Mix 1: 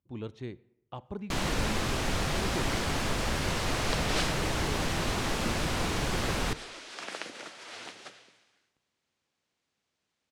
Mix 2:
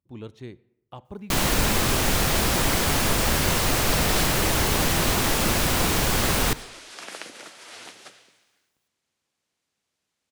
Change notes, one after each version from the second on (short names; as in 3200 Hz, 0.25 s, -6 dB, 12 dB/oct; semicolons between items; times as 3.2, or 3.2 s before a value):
first sound +7.0 dB; master: remove air absorption 57 m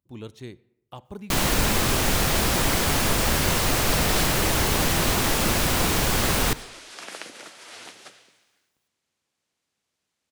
speech: add high shelf 4900 Hz +12 dB